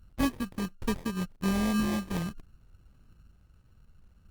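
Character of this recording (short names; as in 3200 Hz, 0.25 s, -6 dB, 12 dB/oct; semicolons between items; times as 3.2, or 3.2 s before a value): a buzz of ramps at a fixed pitch in blocks of 16 samples; phasing stages 12, 1.4 Hz, lowest notch 460–1400 Hz; aliases and images of a low sample rate 1400 Hz, jitter 0%; Opus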